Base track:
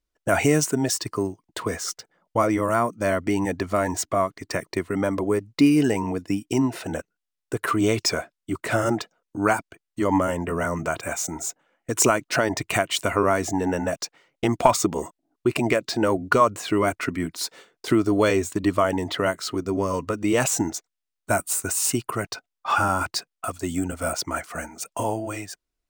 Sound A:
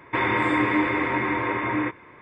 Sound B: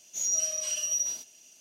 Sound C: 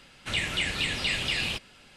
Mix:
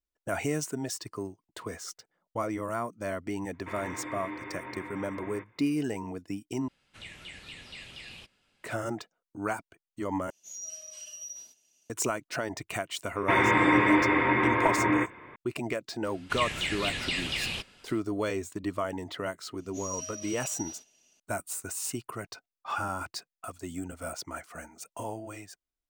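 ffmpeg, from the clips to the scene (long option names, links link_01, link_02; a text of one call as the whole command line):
ffmpeg -i bed.wav -i cue0.wav -i cue1.wav -i cue2.wav -filter_complex "[1:a]asplit=2[link_01][link_02];[3:a]asplit=2[link_03][link_04];[2:a]asplit=2[link_05][link_06];[0:a]volume=-11dB[link_07];[link_06]lowpass=frequency=3100:poles=1[link_08];[link_07]asplit=3[link_09][link_10][link_11];[link_09]atrim=end=6.684[link_12];[link_03]atrim=end=1.96,asetpts=PTS-STARTPTS,volume=-17dB[link_13];[link_10]atrim=start=8.636:end=10.304[link_14];[link_05]atrim=end=1.6,asetpts=PTS-STARTPTS,volume=-13dB[link_15];[link_11]atrim=start=11.896[link_16];[link_01]atrim=end=2.21,asetpts=PTS-STARTPTS,volume=-17.5dB,afade=type=in:duration=0.004:curve=hsin,afade=type=out:start_time=2.206:duration=0.004:curve=hsin,adelay=155673S[link_17];[link_02]atrim=end=2.21,asetpts=PTS-STARTPTS,afade=type=in:duration=0.004:curve=hsin,afade=type=out:start_time=2.206:duration=0.004:curve=hsin,adelay=13150[link_18];[link_04]atrim=end=1.96,asetpts=PTS-STARTPTS,volume=-3.5dB,afade=type=in:duration=0.004:curve=hsin,afade=type=out:start_time=1.956:duration=0.004:curve=hsin,adelay=707364S[link_19];[link_08]atrim=end=1.6,asetpts=PTS-STARTPTS,volume=-4.5dB,afade=type=in:duration=0.004:curve=hsin,afade=type=out:start_time=1.596:duration=0.004:curve=hsin,adelay=19600[link_20];[link_12][link_13]acrossfade=duration=0.004:curve1=hsin:curve2=hsin[link_21];[link_21][link_14]acrossfade=duration=0.004:curve1=hsin:curve2=hsin[link_22];[link_22][link_15]acrossfade=duration=0.004:curve1=hsin:curve2=hsin[link_23];[link_23][link_16]acrossfade=duration=0.004:curve1=hsin:curve2=hsin[link_24];[link_24][link_17][link_18][link_19][link_20]amix=inputs=5:normalize=0" out.wav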